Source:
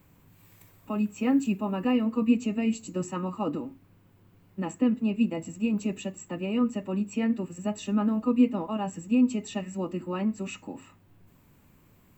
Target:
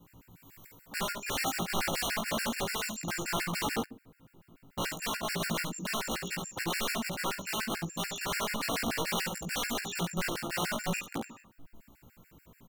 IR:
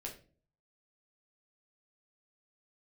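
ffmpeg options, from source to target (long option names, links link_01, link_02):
-filter_complex "[0:a]equalizer=frequency=100:width_type=o:width=0.23:gain=-9,acrossover=split=370|2000[link_01][link_02][link_03];[link_01]alimiter=limit=-23dB:level=0:latency=1:release=84[link_04];[link_04][link_02][link_03]amix=inputs=3:normalize=0,aeval=exprs='(mod(31.6*val(0)+1,2)-1)/31.6':channel_layout=same,asplit=2[link_05][link_06];[link_06]adelay=17,volume=-4dB[link_07];[link_05][link_07]amix=inputs=2:normalize=0,aecho=1:1:17|67:0.398|0.631,asplit=2[link_08][link_09];[1:a]atrim=start_sample=2205,asetrate=38808,aresample=44100[link_10];[link_09][link_10]afir=irnorm=-1:irlink=0,volume=-13.5dB[link_11];[link_08][link_11]amix=inputs=2:normalize=0,asetrate=42336,aresample=44100,afftfilt=real='re*gt(sin(2*PI*6.9*pts/sr)*(1-2*mod(floor(b*sr/1024/1400),2)),0)':imag='im*gt(sin(2*PI*6.9*pts/sr)*(1-2*mod(floor(b*sr/1024/1400),2)),0)':win_size=1024:overlap=0.75"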